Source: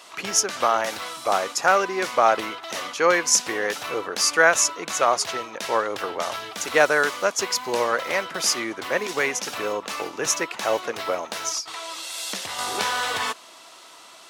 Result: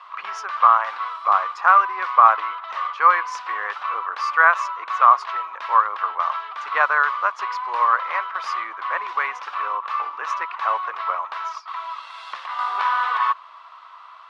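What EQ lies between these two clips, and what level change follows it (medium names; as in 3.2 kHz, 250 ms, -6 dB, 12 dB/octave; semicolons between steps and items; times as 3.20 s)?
resonant high-pass 1.1 kHz, resonance Q 6.6; low-pass 11 kHz 24 dB/octave; distance through air 360 m; -1.5 dB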